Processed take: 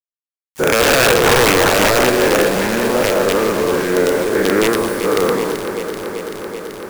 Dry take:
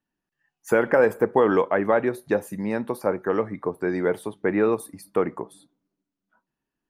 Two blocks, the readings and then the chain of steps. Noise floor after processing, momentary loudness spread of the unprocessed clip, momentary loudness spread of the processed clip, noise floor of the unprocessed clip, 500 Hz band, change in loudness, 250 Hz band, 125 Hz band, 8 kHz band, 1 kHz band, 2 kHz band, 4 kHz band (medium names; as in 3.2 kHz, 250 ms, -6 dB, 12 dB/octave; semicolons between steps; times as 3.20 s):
under -85 dBFS, 9 LU, 13 LU, under -85 dBFS, +8.0 dB, +9.5 dB, +7.5 dB, +10.5 dB, +24.5 dB, +10.5 dB, +13.5 dB, no reading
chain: every event in the spectrogram widened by 240 ms; treble shelf 5.6 kHz -5.5 dB; in parallel at -7 dB: saturation -16 dBFS, distortion -9 dB; on the sum: bit crusher 5-bit; integer overflow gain 6 dB; on a send: echo whose repeats swap between lows and highs 192 ms, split 1.3 kHz, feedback 88%, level -8 dB; on the sum: trim -1 dB